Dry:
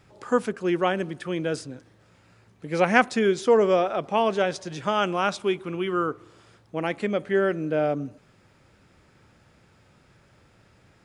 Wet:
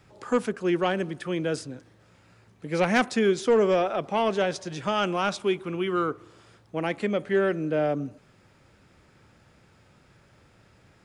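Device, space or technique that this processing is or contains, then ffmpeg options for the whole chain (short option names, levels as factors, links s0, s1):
one-band saturation: -filter_complex "[0:a]acrossover=split=370|2400[s0][s1][s2];[s1]asoftclip=type=tanh:threshold=0.112[s3];[s0][s3][s2]amix=inputs=3:normalize=0"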